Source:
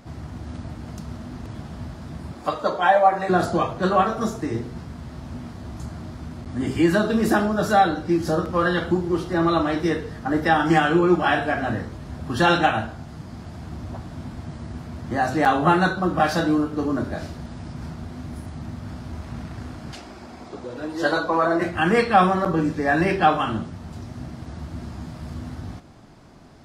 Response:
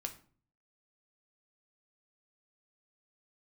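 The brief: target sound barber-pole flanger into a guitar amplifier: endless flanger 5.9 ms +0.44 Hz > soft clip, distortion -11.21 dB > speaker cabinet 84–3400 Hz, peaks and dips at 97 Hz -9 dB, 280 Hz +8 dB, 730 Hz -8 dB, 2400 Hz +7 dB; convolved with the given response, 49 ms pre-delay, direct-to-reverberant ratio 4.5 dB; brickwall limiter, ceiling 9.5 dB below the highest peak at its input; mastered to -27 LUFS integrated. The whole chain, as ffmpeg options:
-filter_complex "[0:a]alimiter=limit=-13.5dB:level=0:latency=1,asplit=2[a][b];[1:a]atrim=start_sample=2205,adelay=49[c];[b][c]afir=irnorm=-1:irlink=0,volume=-3dB[d];[a][d]amix=inputs=2:normalize=0,asplit=2[e][f];[f]adelay=5.9,afreqshift=0.44[g];[e][g]amix=inputs=2:normalize=1,asoftclip=threshold=-23dB,highpass=84,equalizer=f=97:t=q:w=4:g=-9,equalizer=f=280:t=q:w=4:g=8,equalizer=f=730:t=q:w=4:g=-8,equalizer=f=2.4k:t=q:w=4:g=7,lowpass=f=3.4k:w=0.5412,lowpass=f=3.4k:w=1.3066,volume=2.5dB"

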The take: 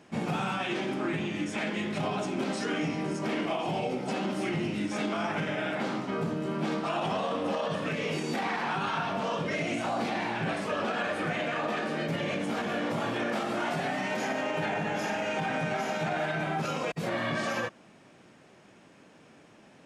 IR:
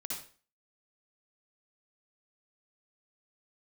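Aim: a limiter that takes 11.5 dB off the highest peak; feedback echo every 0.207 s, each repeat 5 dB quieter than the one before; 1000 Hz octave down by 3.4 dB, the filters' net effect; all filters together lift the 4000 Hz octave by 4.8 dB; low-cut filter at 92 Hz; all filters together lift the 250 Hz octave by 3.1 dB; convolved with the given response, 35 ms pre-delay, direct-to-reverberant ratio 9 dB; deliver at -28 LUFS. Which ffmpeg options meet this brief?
-filter_complex "[0:a]highpass=92,equalizer=f=250:t=o:g=4.5,equalizer=f=1k:t=o:g=-5.5,equalizer=f=4k:t=o:g=7,alimiter=level_in=5dB:limit=-24dB:level=0:latency=1,volume=-5dB,aecho=1:1:207|414|621|828|1035|1242|1449:0.562|0.315|0.176|0.0988|0.0553|0.031|0.0173,asplit=2[a][b];[1:a]atrim=start_sample=2205,adelay=35[c];[b][c]afir=irnorm=-1:irlink=0,volume=-9dB[d];[a][d]amix=inputs=2:normalize=0,volume=6.5dB"

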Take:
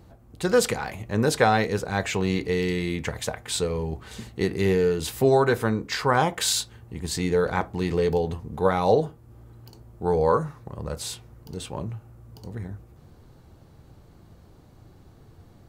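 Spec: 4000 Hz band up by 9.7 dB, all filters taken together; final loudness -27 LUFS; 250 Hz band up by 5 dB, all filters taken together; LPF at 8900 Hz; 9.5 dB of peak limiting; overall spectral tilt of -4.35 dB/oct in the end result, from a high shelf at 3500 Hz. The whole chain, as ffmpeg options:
-af "lowpass=8.9k,equalizer=f=250:t=o:g=7,highshelf=f=3.5k:g=3.5,equalizer=f=4k:t=o:g=9,volume=-2dB,alimiter=limit=-14.5dB:level=0:latency=1"

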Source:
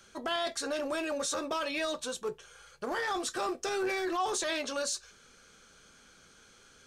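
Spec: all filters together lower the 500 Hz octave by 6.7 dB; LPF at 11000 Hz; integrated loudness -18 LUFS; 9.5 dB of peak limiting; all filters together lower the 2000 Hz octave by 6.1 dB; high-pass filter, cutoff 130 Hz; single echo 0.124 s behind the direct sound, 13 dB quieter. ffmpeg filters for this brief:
-af "highpass=130,lowpass=11k,equalizer=f=500:t=o:g=-9,equalizer=f=2k:t=o:g=-7.5,alimiter=level_in=9dB:limit=-24dB:level=0:latency=1,volume=-9dB,aecho=1:1:124:0.224,volume=23.5dB"

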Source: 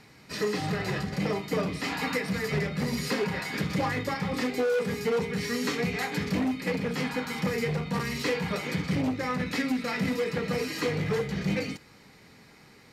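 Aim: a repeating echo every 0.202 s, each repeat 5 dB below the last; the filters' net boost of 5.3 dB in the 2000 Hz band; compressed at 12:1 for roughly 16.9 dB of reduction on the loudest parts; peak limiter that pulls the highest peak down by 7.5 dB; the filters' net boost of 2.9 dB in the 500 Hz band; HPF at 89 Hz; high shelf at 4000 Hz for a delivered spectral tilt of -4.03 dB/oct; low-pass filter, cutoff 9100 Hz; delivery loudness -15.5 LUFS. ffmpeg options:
-af "highpass=89,lowpass=9.1k,equalizer=f=500:t=o:g=3,equalizer=f=2k:t=o:g=6.5,highshelf=f=4k:g=-3,acompressor=threshold=-38dB:ratio=12,alimiter=level_in=10.5dB:limit=-24dB:level=0:latency=1,volume=-10.5dB,aecho=1:1:202|404|606|808|1010|1212|1414:0.562|0.315|0.176|0.0988|0.0553|0.031|0.0173,volume=26dB"

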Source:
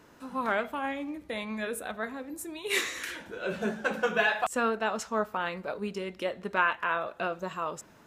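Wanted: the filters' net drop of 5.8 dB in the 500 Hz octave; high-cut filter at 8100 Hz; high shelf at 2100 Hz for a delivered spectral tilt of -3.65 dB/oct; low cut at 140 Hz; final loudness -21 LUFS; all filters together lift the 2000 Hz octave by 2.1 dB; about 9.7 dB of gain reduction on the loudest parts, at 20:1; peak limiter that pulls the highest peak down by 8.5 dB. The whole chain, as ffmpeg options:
-af "highpass=140,lowpass=8.1k,equalizer=f=500:t=o:g=-7.5,equalizer=f=2k:t=o:g=5,highshelf=f=2.1k:g=-3,acompressor=threshold=-29dB:ratio=20,volume=17.5dB,alimiter=limit=-10dB:level=0:latency=1"

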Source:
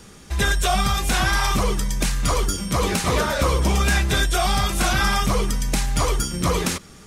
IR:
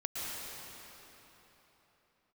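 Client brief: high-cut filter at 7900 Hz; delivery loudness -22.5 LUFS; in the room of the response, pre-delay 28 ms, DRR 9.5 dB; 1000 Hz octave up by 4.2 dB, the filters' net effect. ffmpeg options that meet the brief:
-filter_complex "[0:a]lowpass=7.9k,equalizer=f=1k:t=o:g=5.5,asplit=2[a][b];[1:a]atrim=start_sample=2205,adelay=28[c];[b][c]afir=irnorm=-1:irlink=0,volume=-13.5dB[d];[a][d]amix=inputs=2:normalize=0,volume=-2.5dB"

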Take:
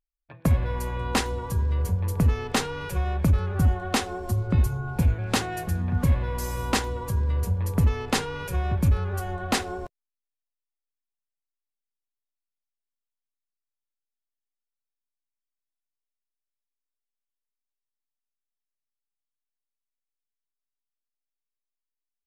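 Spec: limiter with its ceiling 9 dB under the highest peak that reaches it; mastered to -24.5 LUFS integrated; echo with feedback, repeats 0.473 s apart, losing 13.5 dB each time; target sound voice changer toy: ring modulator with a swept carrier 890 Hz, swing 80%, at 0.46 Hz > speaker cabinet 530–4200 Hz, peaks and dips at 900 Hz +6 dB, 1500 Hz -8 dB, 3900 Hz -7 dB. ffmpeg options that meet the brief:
-af "alimiter=limit=-23dB:level=0:latency=1,aecho=1:1:473|946:0.211|0.0444,aeval=exprs='val(0)*sin(2*PI*890*n/s+890*0.8/0.46*sin(2*PI*0.46*n/s))':c=same,highpass=530,equalizer=f=900:t=q:w=4:g=6,equalizer=f=1.5k:t=q:w=4:g=-8,equalizer=f=3.9k:t=q:w=4:g=-7,lowpass=f=4.2k:w=0.5412,lowpass=f=4.2k:w=1.3066,volume=10dB"

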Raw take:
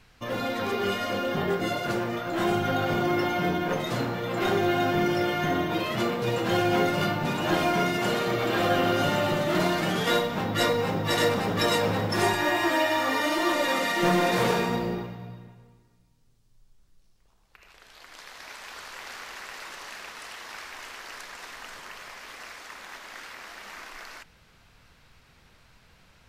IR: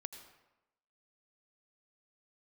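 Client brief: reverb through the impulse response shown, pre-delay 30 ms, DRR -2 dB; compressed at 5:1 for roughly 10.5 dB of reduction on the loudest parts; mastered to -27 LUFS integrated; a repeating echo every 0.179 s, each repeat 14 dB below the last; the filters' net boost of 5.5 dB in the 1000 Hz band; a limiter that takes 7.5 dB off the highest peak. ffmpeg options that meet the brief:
-filter_complex "[0:a]equalizer=f=1k:t=o:g=7.5,acompressor=threshold=-29dB:ratio=5,alimiter=level_in=0.5dB:limit=-24dB:level=0:latency=1,volume=-0.5dB,aecho=1:1:179|358:0.2|0.0399,asplit=2[a][b];[1:a]atrim=start_sample=2205,adelay=30[c];[b][c]afir=irnorm=-1:irlink=0,volume=5.5dB[d];[a][d]amix=inputs=2:normalize=0,volume=3dB"

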